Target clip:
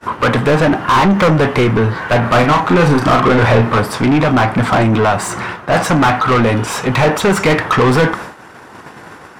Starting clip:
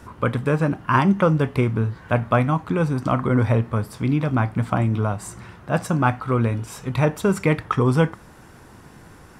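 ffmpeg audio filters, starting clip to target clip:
-filter_complex "[0:a]agate=range=-33dB:threshold=-37dB:ratio=3:detection=peak,asplit=2[a][b];[b]highpass=f=720:p=1,volume=33dB,asoftclip=type=tanh:threshold=-3dB[c];[a][c]amix=inputs=2:normalize=0,lowpass=f=2.2k:p=1,volume=-6dB,asettb=1/sr,asplit=3[d][e][f];[d]atrim=end=2.204[g];[e]atrim=start=2.2:end=3.8,asetpts=PTS-STARTPTS,afade=t=in:d=0.004:c=qsin,afade=t=out:st=1.596:d=0.004:c=qsin,asplit=2[h][i];[i]adelay=34,volume=-6dB[j];[h][j]amix=inputs=2:normalize=0,atrim=end_sample=70560[k];[f]atrim=start=3.796[l];[g][k]acrossfade=d=0.004:c1=hsin:c2=qsin[m];[m][l]acrossfade=d=0.004:c1=qsin:c2=hsin"

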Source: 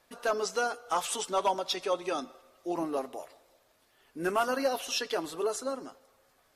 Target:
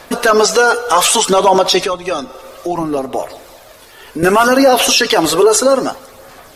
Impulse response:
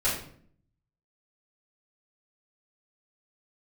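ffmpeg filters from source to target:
-filter_complex "[0:a]asettb=1/sr,asplit=3[a][b][c];[a]atrim=end=1.824[d];[b]atrim=start=1.82:end=4.23,asetpts=PTS-STARTPTS,afade=t=in:d=0.004:c=qsin,afade=t=out:st=2.406:d=0.004:c=qsin,acrossover=split=130[e][f];[f]acompressor=threshold=-47dB:ratio=3[g];[e][g]amix=inputs=2:normalize=0[h];[c]atrim=start=4.226[i];[d][h]acrossfade=d=0.004:c1=hsin:c2=qsin[j];[j][i]acrossfade=d=0.004:c1=qsin:c2=hsin,aphaser=in_gain=1:out_gain=1:delay=2.2:decay=0.35:speed=0.63:type=sinusoidal,alimiter=level_in=27.5dB:limit=-1dB:release=50:level=0:latency=1,volume=-1dB"

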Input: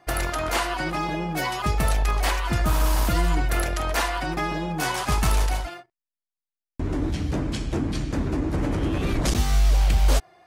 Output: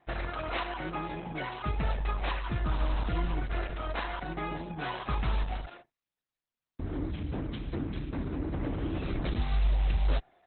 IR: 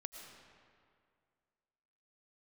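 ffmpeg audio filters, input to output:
-af "volume=-7.5dB" -ar 48000 -c:a libopus -b:a 8k

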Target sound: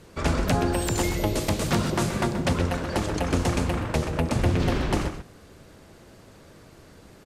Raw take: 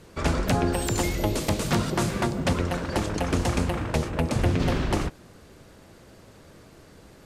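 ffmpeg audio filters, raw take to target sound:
-filter_complex "[0:a]asplit=2[a][b];[b]adelay=128.3,volume=-9dB,highshelf=f=4k:g=-2.89[c];[a][c]amix=inputs=2:normalize=0"

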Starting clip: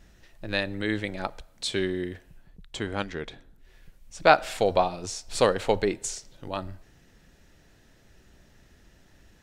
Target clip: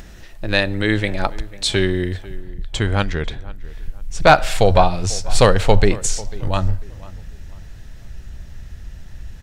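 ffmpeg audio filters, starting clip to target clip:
-filter_complex "[0:a]asubboost=boost=6:cutoff=120,aeval=exprs='0.794*(cos(1*acos(clip(val(0)/0.794,-1,1)))-cos(1*PI/2))+0.126*(cos(3*acos(clip(val(0)/0.794,-1,1)))-cos(3*PI/2))+0.0708*(cos(5*acos(clip(val(0)/0.794,-1,1)))-cos(5*PI/2))':c=same,acompressor=mode=upward:threshold=-43dB:ratio=2.5,apsyclip=12dB,asplit=2[a][b];[b]adelay=495,lowpass=f=2.1k:p=1,volume=-19dB,asplit=2[c][d];[d]adelay=495,lowpass=f=2.1k:p=1,volume=0.33,asplit=2[e][f];[f]adelay=495,lowpass=f=2.1k:p=1,volume=0.33[g];[c][e][g]amix=inputs=3:normalize=0[h];[a][h]amix=inputs=2:normalize=0,volume=-1.5dB"

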